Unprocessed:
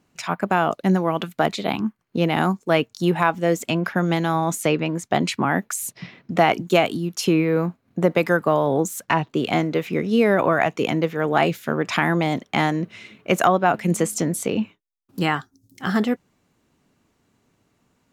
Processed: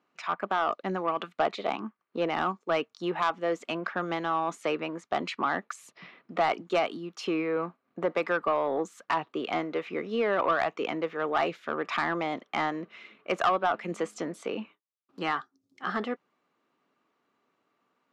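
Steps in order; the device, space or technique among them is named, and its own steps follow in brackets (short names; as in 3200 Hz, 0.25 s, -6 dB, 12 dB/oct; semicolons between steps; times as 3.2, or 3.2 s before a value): 1.34–2.3 dynamic EQ 580 Hz, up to +4 dB, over -31 dBFS, Q 1; intercom (BPF 350–3500 Hz; bell 1200 Hz +8 dB 0.27 oct; soft clip -11 dBFS, distortion -15 dB); gain -6 dB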